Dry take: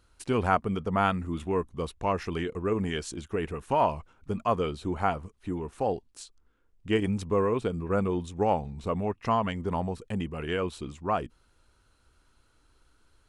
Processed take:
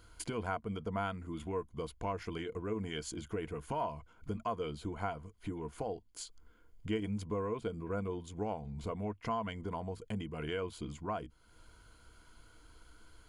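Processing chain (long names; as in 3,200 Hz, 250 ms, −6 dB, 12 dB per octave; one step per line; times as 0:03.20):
downward compressor 2.5 to 1, threshold −48 dBFS, peak gain reduction 19 dB
EQ curve with evenly spaced ripples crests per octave 1.8, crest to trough 8 dB
level +4.5 dB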